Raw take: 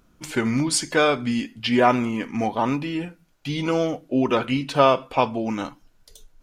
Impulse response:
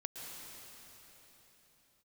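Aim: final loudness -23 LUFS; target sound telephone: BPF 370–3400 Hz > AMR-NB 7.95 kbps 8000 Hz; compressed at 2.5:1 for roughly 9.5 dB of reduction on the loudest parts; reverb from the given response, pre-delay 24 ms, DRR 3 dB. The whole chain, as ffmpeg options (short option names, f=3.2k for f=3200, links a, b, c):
-filter_complex "[0:a]acompressor=threshold=-26dB:ratio=2.5,asplit=2[a][b];[1:a]atrim=start_sample=2205,adelay=24[c];[b][c]afir=irnorm=-1:irlink=0,volume=-2dB[d];[a][d]amix=inputs=2:normalize=0,highpass=370,lowpass=3.4k,volume=8dB" -ar 8000 -c:a libopencore_amrnb -b:a 7950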